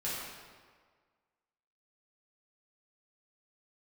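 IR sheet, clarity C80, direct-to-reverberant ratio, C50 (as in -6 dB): 0.5 dB, -9.0 dB, -2.0 dB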